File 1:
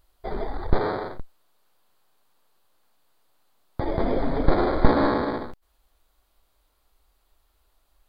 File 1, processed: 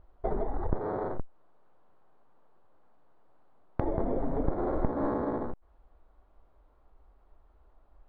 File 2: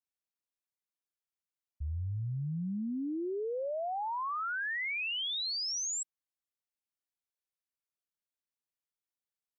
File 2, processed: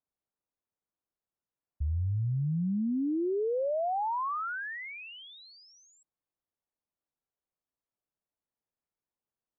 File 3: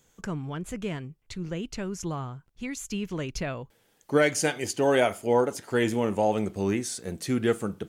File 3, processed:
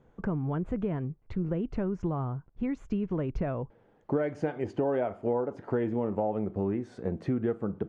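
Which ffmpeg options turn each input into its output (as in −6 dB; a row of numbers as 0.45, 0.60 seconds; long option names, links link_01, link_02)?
-af "lowpass=1000,acompressor=threshold=-34dB:ratio=5,volume=7dB"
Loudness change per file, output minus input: −7.5, +2.5, −4.0 LU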